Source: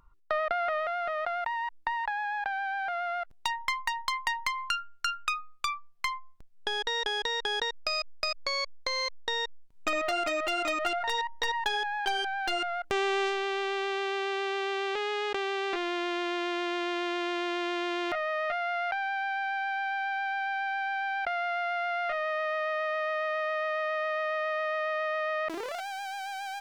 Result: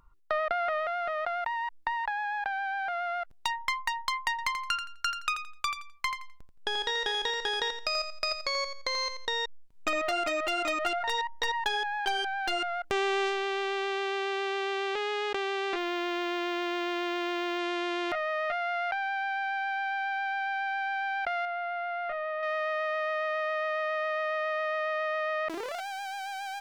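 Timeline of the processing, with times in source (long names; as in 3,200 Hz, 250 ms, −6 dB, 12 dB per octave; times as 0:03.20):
0:04.30–0:09.33: repeating echo 85 ms, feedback 25%, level −8.5 dB
0:15.78–0:17.59: linearly interpolated sample-rate reduction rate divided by 2×
0:21.45–0:22.43: head-to-tape spacing loss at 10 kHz 26 dB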